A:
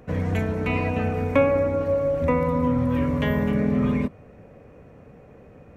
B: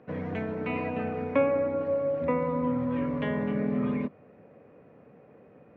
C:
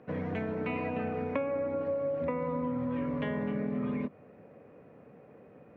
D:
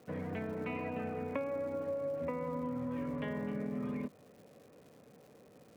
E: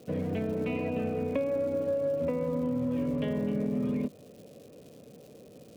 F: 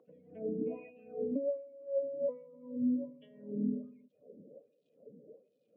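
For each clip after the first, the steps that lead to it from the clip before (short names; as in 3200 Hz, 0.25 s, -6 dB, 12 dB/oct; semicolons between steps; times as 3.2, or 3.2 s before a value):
HPF 180 Hz 12 dB/oct; air absorption 270 m; gain -4 dB
compressor, threshold -29 dBFS, peak gain reduction 10 dB
crackle 290/s -48 dBFS; gain -5 dB
band shelf 1300 Hz -10 dB; in parallel at -10 dB: hard clip -35.5 dBFS, distortion -14 dB; on the sum: gain +6 dB
spectral contrast raised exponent 2; LFO band-pass sine 1.3 Hz 250–3900 Hz; gain +1.5 dB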